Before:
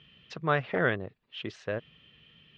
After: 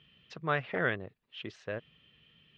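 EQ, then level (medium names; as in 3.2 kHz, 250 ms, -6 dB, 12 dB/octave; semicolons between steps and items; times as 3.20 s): dynamic bell 2.3 kHz, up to +4 dB, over -40 dBFS, Q 1; -5.0 dB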